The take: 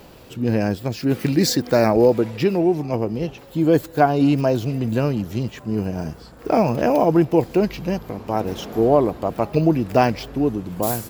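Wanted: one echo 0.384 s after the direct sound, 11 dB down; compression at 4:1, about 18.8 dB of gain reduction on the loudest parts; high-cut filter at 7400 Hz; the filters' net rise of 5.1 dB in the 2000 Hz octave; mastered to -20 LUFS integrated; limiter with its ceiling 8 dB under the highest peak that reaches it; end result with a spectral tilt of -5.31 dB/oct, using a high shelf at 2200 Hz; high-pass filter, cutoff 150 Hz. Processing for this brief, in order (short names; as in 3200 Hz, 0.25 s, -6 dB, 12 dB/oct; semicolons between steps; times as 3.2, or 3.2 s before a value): HPF 150 Hz; LPF 7400 Hz; bell 2000 Hz +3.5 dB; high shelf 2200 Hz +6 dB; compressor 4:1, threshold -33 dBFS; limiter -25 dBFS; echo 0.384 s -11 dB; gain +16 dB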